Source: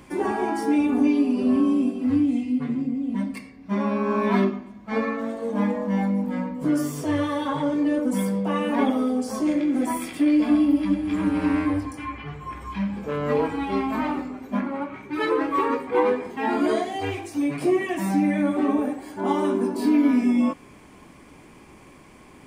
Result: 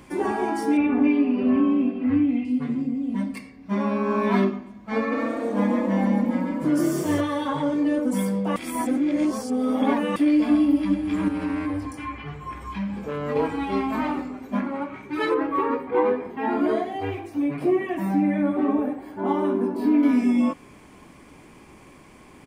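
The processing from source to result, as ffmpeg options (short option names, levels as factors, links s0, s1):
-filter_complex "[0:a]asettb=1/sr,asplit=3[s0][s1][s2];[s0]atrim=end=0.774[s3];[s1]atrim=start=0.77:end=2.45,asetpts=PTS-STARTPTS,afade=t=in:d=0.004:c=qsin,afade=t=out:st=1.676:d=0.004:c=qsin,lowpass=f=2200:t=q:w=1.8[s4];[s2]atrim=start=2.446[s5];[s3][s4]acrossfade=d=0.004:c1=hsin:c2=qsin[s6];[s6][s5]acrossfade=d=0.004:c1=qsin:c2=hsin,asplit=3[s7][s8][s9];[s7]afade=t=out:st=5.11:d=0.02[s10];[s8]asplit=6[s11][s12][s13][s14][s15][s16];[s12]adelay=144,afreqshift=35,volume=0.708[s17];[s13]adelay=288,afreqshift=70,volume=0.263[s18];[s14]adelay=432,afreqshift=105,volume=0.0966[s19];[s15]adelay=576,afreqshift=140,volume=0.0359[s20];[s16]adelay=720,afreqshift=175,volume=0.0133[s21];[s11][s17][s18][s19][s20][s21]amix=inputs=6:normalize=0,afade=t=in:st=5.11:d=0.02,afade=t=out:st=7.2:d=0.02[s22];[s9]afade=t=in:st=7.2:d=0.02[s23];[s10][s22][s23]amix=inputs=3:normalize=0,asettb=1/sr,asplit=3[s24][s25][s26];[s24]atrim=end=11.284[s27];[s25]atrim=start=11.28:end=13.36,asetpts=PTS-STARTPTS,afade=t=in:d=0.004:c=qsin,afade=t=out:st=2.076:d=0.004:c=qsin,acompressor=threshold=0.0501:ratio=2:attack=3.2:release=140:knee=1:detection=peak[s28];[s26]atrim=start=13.356[s29];[s27][s28]acrossfade=d=0.004:c1=hsin:c2=qsin[s30];[s30][s29]acrossfade=d=0.004:c1=qsin:c2=hsin,asettb=1/sr,asplit=3[s31][s32][s33];[s31]atrim=end=15.344[s34];[s32]atrim=start=15.34:end=20.03,asetpts=PTS-STARTPTS,afade=t=in:d=0.004:c=qsin,afade=t=out:st=4.686:d=0.004:c=qsin,equalizer=f=7400:t=o:w=2.1:g=-14.5[s35];[s33]atrim=start=20.026[s36];[s34][s35]acrossfade=d=0.004:c1=hsin:c2=qsin[s37];[s37][s36]acrossfade=d=0.004:c1=qsin:c2=hsin,asplit=3[s38][s39][s40];[s38]atrim=end=8.562[s41];[s39]atrim=start=8.558:end=10.162,asetpts=PTS-STARTPTS,areverse[s42];[s40]atrim=start=10.158[s43];[s41][s42]acrossfade=d=0.004:c1=hsin:c2=hsin[s44];[s44][s43]acrossfade=d=0.004:c1=hsin:c2=hsin"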